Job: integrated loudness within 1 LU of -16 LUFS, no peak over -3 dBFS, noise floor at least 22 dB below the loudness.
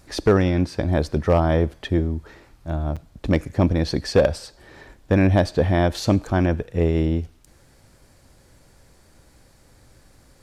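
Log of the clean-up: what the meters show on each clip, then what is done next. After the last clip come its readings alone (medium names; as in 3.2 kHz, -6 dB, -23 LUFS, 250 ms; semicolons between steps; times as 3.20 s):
clipped samples 0.4%; clipping level -9.0 dBFS; dropouts 1; longest dropout 6.4 ms; loudness -21.5 LUFS; peak level -9.0 dBFS; loudness target -16.0 LUFS
-> clip repair -9 dBFS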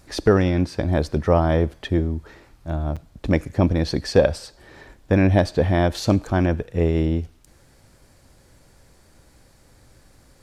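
clipped samples 0.0%; dropouts 1; longest dropout 6.4 ms
-> interpolate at 2.96 s, 6.4 ms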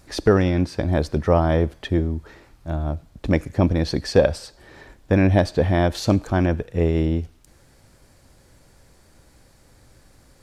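dropouts 0; loudness -21.5 LUFS; peak level -4.0 dBFS; loudness target -16.0 LUFS
-> trim +5.5 dB; peak limiter -3 dBFS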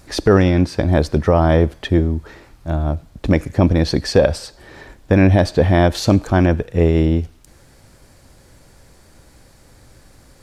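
loudness -16.5 LUFS; peak level -3.0 dBFS; noise floor -49 dBFS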